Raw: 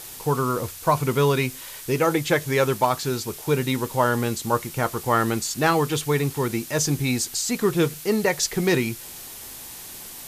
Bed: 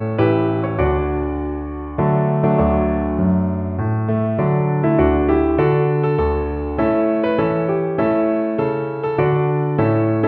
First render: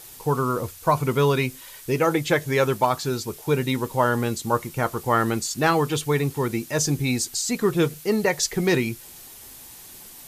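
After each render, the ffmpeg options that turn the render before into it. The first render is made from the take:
-af "afftdn=nr=6:nf=-39"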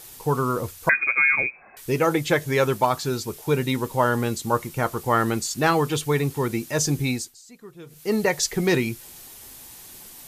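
-filter_complex "[0:a]asettb=1/sr,asplit=3[a][b][c];[a]atrim=end=0.894[d];[b]atrim=start=0.89:end=1.77,asetpts=PTS-STARTPTS,afade=t=in:d=0.004:c=qsin,afade=t=out:st=0.876:d=0.004:c=qsin,lowpass=f=2.2k:t=q:w=0.5098,lowpass=f=2.2k:t=q:w=0.6013,lowpass=f=2.2k:t=q:w=0.9,lowpass=f=2.2k:t=q:w=2.563,afreqshift=-2600[e];[c]atrim=start=1.766[f];[d][e]acrossfade=d=0.004:c1=hsin:c2=qsin[g];[g][f]acrossfade=d=0.004:c1=qsin:c2=hsin,asplit=3[h][i][j];[h]atrim=end=7.35,asetpts=PTS-STARTPTS,afade=t=out:st=7.06:d=0.29:silence=0.0794328[k];[i]atrim=start=7.35:end=7.86,asetpts=PTS-STARTPTS,volume=-22dB[l];[j]atrim=start=7.86,asetpts=PTS-STARTPTS,afade=t=in:d=0.29:silence=0.0794328[m];[k][l][m]concat=n=3:v=0:a=1"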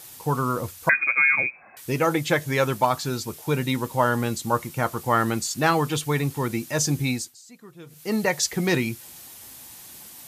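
-af "highpass=71,equalizer=f=410:w=4.2:g=-6"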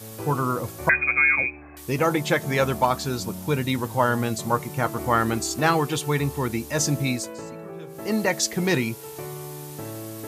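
-filter_complex "[1:a]volume=-19.5dB[a];[0:a][a]amix=inputs=2:normalize=0"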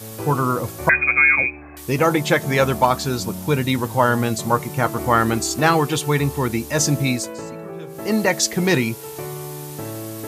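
-af "volume=4.5dB,alimiter=limit=-3dB:level=0:latency=1"

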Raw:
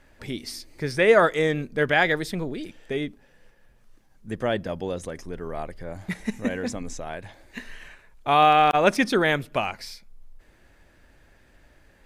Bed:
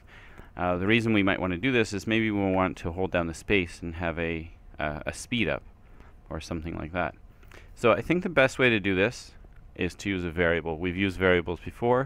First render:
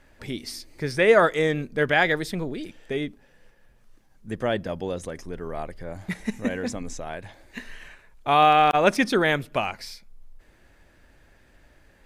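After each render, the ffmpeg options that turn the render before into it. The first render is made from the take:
-af anull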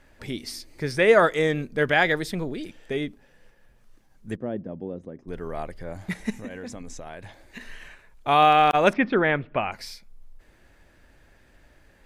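-filter_complex "[0:a]asplit=3[a][b][c];[a]afade=t=out:st=4.35:d=0.02[d];[b]bandpass=f=240:t=q:w=1.1,afade=t=in:st=4.35:d=0.02,afade=t=out:st=5.27:d=0.02[e];[c]afade=t=in:st=5.27:d=0.02[f];[d][e][f]amix=inputs=3:normalize=0,asettb=1/sr,asplit=3[g][h][i];[g]atrim=end=6.354[j];[h]atrim=start=6.35:end=7.61,asetpts=PTS-STARTPTS,afade=t=in:d=0.004:c=qsin,afade=t=out:st=1.256:d=0.004:c=qsin,acompressor=threshold=-35dB:ratio=3:attack=3.2:release=140:knee=1:detection=peak[k];[i]atrim=start=7.606[l];[j][k]acrossfade=d=0.004:c1=hsin:c2=qsin[m];[m][l]acrossfade=d=0.004:c1=qsin:c2=hsin,asettb=1/sr,asplit=3[n][o][p];[n]atrim=end=8.934[q];[o]atrim=start=8.93:end=9.72,asetpts=PTS-STARTPTS,afade=t=in:d=0.004:c=qsin,afade=t=out:st=0.786:d=0.004:c=qsin,lowpass=f=2.6k:w=0.5412,lowpass=f=2.6k:w=1.3066[r];[p]atrim=start=9.716[s];[q][r]acrossfade=d=0.004:c1=hsin:c2=qsin[t];[t][s]acrossfade=d=0.004:c1=qsin:c2=hsin"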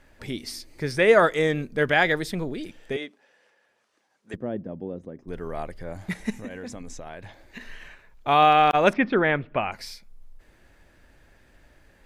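-filter_complex "[0:a]asettb=1/sr,asplit=3[a][b][c];[a]atrim=end=2.964[d];[b]atrim=start=2.96:end=4.34,asetpts=PTS-STARTPTS,afade=t=in:d=0.004:c=qsin,afade=t=out:st=1.376:d=0.004:c=qsin,highpass=480,lowpass=7.8k[e];[c]atrim=start=4.336[f];[d][e]acrossfade=d=0.004:c1=hsin:c2=qsin[g];[g][f]acrossfade=d=0.004:c1=qsin:c2=hsin,asettb=1/sr,asplit=3[h][i][j];[h]atrim=end=6.964[k];[i]atrim=start=6.96:end=8.88,asetpts=PTS-STARTPTS,afade=t=in:d=0.004:c=qsin,afade=t=out:st=1.916:d=0.004:c=qsin,equalizer=f=9.4k:t=o:w=0.77:g=-6.5[l];[j]atrim=start=8.876[m];[k][l]acrossfade=d=0.004:c1=hsin:c2=qsin[n];[n][m]acrossfade=d=0.004:c1=qsin:c2=hsin"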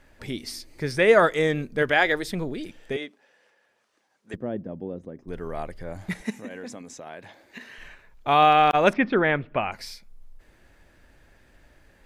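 -filter_complex "[0:a]asettb=1/sr,asplit=3[a][b][c];[a]atrim=end=1.824[d];[b]atrim=start=1.82:end=2.28,asetpts=PTS-STARTPTS,afade=t=in:d=0.004:c=qsin,afade=t=out:st=0.456:d=0.004:c=qsin,equalizer=f=170:t=o:w=0.41:g=-13[e];[c]atrim=start=2.276[f];[d][e]acrossfade=d=0.004:c1=hsin:c2=qsin[g];[g][f]acrossfade=d=0.004:c1=qsin:c2=hsin,asettb=1/sr,asplit=3[h][i][j];[h]atrim=end=6.224[k];[i]atrim=start=6.22:end=7.78,asetpts=PTS-STARTPTS,afade=t=in:d=0.004:c=qsin,afade=t=out:st=1.556:d=0.004:c=qsin,highpass=180[l];[j]atrim=start=7.776[m];[k][l]acrossfade=d=0.004:c1=hsin:c2=qsin[n];[n][m]acrossfade=d=0.004:c1=qsin:c2=hsin"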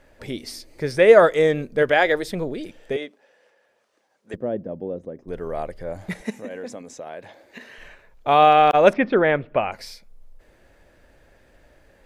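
-af "equalizer=f=540:w=1.6:g=7.5"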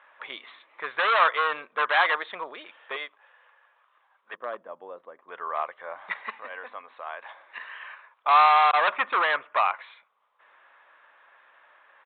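-af "aresample=8000,volume=18.5dB,asoftclip=hard,volume=-18.5dB,aresample=44100,highpass=f=1.1k:t=q:w=4.8"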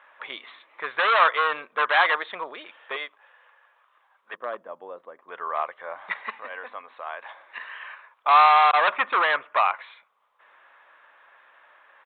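-af "volume=2dB"

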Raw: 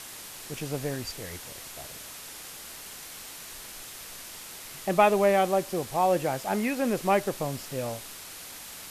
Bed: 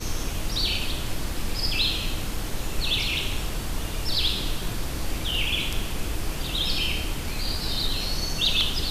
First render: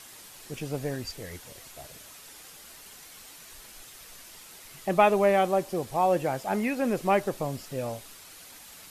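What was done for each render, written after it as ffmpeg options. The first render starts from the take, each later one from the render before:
-af "afftdn=nr=7:nf=-43"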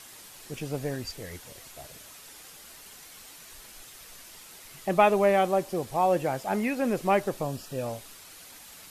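-filter_complex "[0:a]asettb=1/sr,asplit=3[a][b][c];[a]atrim=end=7.444[d];[b]atrim=start=7.44:end=7.86,asetpts=PTS-STARTPTS,afade=t=in:d=0.004:c=qsin,afade=t=out:st=0.416:d=0.004:c=qsin,asuperstop=centerf=2100:order=12:qfactor=6.7[e];[c]atrim=start=7.856[f];[d][e]acrossfade=d=0.004:c1=hsin:c2=qsin[g];[g][f]acrossfade=d=0.004:c1=qsin:c2=hsin"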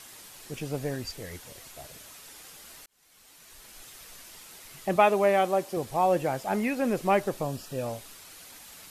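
-filter_complex "[0:a]asettb=1/sr,asplit=3[a][b][c];[a]atrim=end=4.964[d];[b]atrim=start=4.96:end=5.77,asetpts=PTS-STARTPTS,afade=t=in:d=0.004:c=qsin,afade=t=out:st=0.806:d=0.004:c=qsin,highpass=f=210:p=1[e];[c]atrim=start=5.766[f];[d][e]acrossfade=d=0.004:c1=hsin:c2=qsin[g];[g][f]acrossfade=d=0.004:c1=qsin:c2=hsin,asplit=2[h][i];[h]atrim=end=2.86,asetpts=PTS-STARTPTS,afade=t=out:st=2.856:d=0.004:c=hsin[j];[i]atrim=start=2.86,asetpts=PTS-STARTPTS,afade=t=in:d=1.01[k];[j][k]concat=n=2:v=0:a=1"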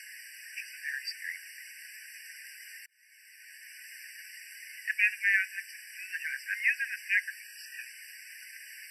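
-af "highpass=f=1.8k:t=q:w=4,afftfilt=real='re*eq(mod(floor(b*sr/1024/1500),2),1)':imag='im*eq(mod(floor(b*sr/1024/1500),2),1)':win_size=1024:overlap=0.75"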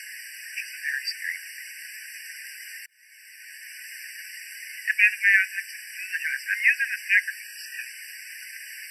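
-af "volume=7.5dB"

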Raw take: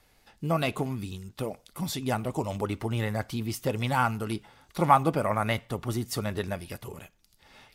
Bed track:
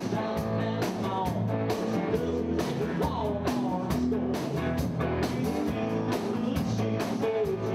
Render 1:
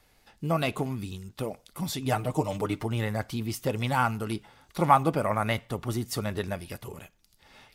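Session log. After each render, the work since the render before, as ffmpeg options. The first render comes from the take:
-filter_complex "[0:a]asettb=1/sr,asplit=3[a][b][c];[a]atrim=end=2.044[d];[b]atrim=start=2.04:end=2.84,asetpts=PTS-STARTPTS,afade=t=in:d=0.004:c=qsin,afade=t=out:st=0.796:d=0.004:c=qsin,aecho=1:1:6.6:0.74,atrim=end_sample=35280[e];[c]atrim=start=2.836[f];[d][e]acrossfade=d=0.004:c1=hsin:c2=qsin[g];[g][f]acrossfade=d=0.004:c1=qsin:c2=hsin"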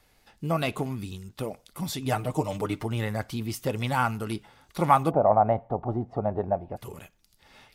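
-filter_complex "[0:a]asplit=3[a][b][c];[a]afade=t=out:st=5.1:d=0.02[d];[b]lowpass=f=750:t=q:w=5.3,afade=t=in:st=5.1:d=0.02,afade=t=out:st=6.76:d=0.02[e];[c]afade=t=in:st=6.76:d=0.02[f];[d][e][f]amix=inputs=3:normalize=0"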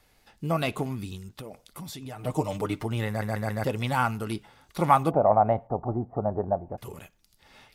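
-filter_complex "[0:a]asettb=1/sr,asplit=3[a][b][c];[a]atrim=end=1.294[d];[b]atrim=start=1.29:end=2.24,asetpts=PTS-STARTPTS,afade=t=in:d=0.004:c=qsin,afade=t=out:st=0.946:d=0.004:c=qsin,acompressor=threshold=-36dB:ratio=6:attack=3.2:release=140:knee=1:detection=peak[e];[c]atrim=start=2.236[f];[d][e]acrossfade=d=0.004:c1=hsin:c2=qsin[g];[g][f]acrossfade=d=0.004:c1=qsin:c2=hsin,asettb=1/sr,asplit=3[h][i][j];[h]atrim=end=5.674[k];[i]atrim=start=5.67:end=6.78,asetpts=PTS-STARTPTS,afade=t=in:d=0.004:c=qsin,afade=t=out:st=1.106:d=0.004:c=qsin,lowpass=f=1.5k:w=0.5412,lowpass=f=1.5k:w=1.3066[l];[j]atrim=start=6.776[m];[k][l]acrossfade=d=0.004:c1=hsin:c2=qsin[n];[n][m]acrossfade=d=0.004:c1=qsin:c2=hsin,asplit=5[o][p][q][r][s];[o]atrim=end=3.222[t];[p]atrim=start=3.078:end=3.222[u];[q]atrim=start=3.078:end=3.222[v];[r]atrim=start=3.078:end=3.222[w];[s]atrim=start=3.638[x];[t][u]acrossfade=d=0.004:c1=hsin:c2=hsin[y];[y][v]acrossfade=d=0.004:c1=hsin:c2=hsin[z];[z][w]acrossfade=d=0.004:c1=hsin:c2=hsin[aa];[aa][x]acrossfade=d=0.004:c1=hsin:c2=hsin"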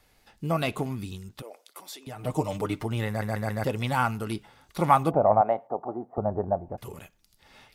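-filter_complex "[0:a]asettb=1/sr,asplit=3[a][b][c];[a]atrim=end=1.424[d];[b]atrim=start=1.42:end=2.07,asetpts=PTS-STARTPTS,afade=t=in:d=0.004:c=qsin,afade=t=out:st=0.646:d=0.004:c=qsin,highpass=f=370:w=0.5412,highpass=f=370:w=1.3066[e];[c]atrim=start=2.066[f];[d][e]acrossfade=d=0.004:c1=hsin:c2=qsin[g];[g][f]acrossfade=d=0.004:c1=qsin:c2=hsin,asettb=1/sr,asplit=3[h][i][j];[h]atrim=end=5.414[k];[i]atrim=start=5.41:end=6.18,asetpts=PTS-STARTPTS,afade=t=in:d=0.004:c=qsin,afade=t=out:st=0.766:d=0.004:c=qsin,highpass=330[l];[j]atrim=start=6.176[m];[k][l]acrossfade=d=0.004:c1=hsin:c2=qsin[n];[n][m]acrossfade=d=0.004:c1=qsin:c2=hsin"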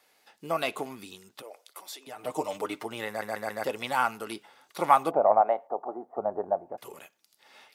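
-af "highpass=400"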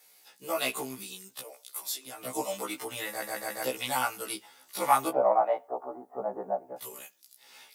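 -filter_complex "[0:a]acrossover=split=880|1300[a][b][c];[c]crystalizer=i=3:c=0[d];[a][b][d]amix=inputs=3:normalize=0,afftfilt=real='re*1.73*eq(mod(b,3),0)':imag='im*1.73*eq(mod(b,3),0)':win_size=2048:overlap=0.75"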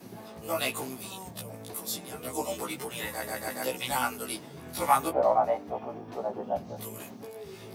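-filter_complex "[1:a]volume=-15.5dB[a];[0:a][a]amix=inputs=2:normalize=0"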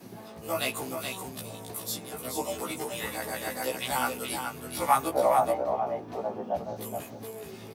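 -af "aecho=1:1:424:0.501"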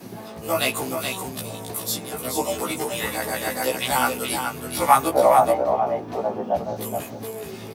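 -af "volume=7.5dB"

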